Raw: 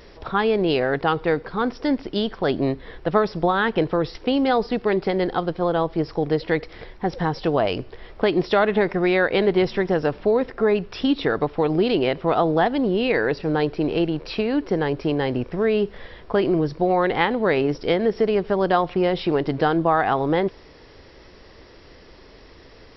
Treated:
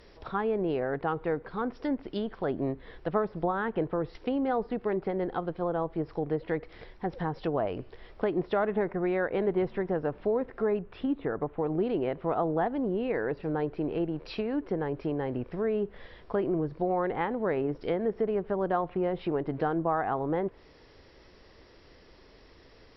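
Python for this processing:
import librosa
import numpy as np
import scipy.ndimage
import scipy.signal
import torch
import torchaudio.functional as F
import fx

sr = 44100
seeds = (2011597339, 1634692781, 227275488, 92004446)

y = fx.env_lowpass_down(x, sr, base_hz=1500.0, full_db=-18.0)
y = fx.air_absorb(y, sr, metres=320.0, at=(10.79, 11.67))
y = y * librosa.db_to_amplitude(-8.5)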